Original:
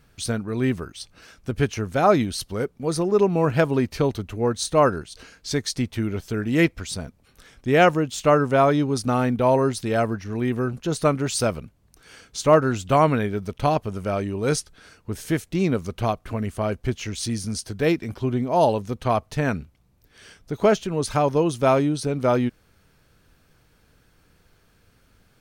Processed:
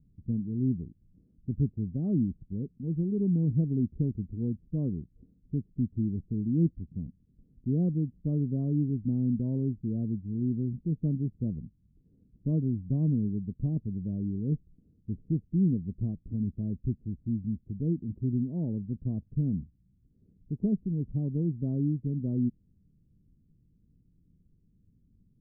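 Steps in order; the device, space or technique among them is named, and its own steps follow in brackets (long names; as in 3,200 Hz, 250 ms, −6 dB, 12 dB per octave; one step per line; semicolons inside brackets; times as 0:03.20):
the neighbour's flat through the wall (low-pass filter 280 Hz 24 dB per octave; parametric band 180 Hz +5 dB 0.8 octaves)
level −5 dB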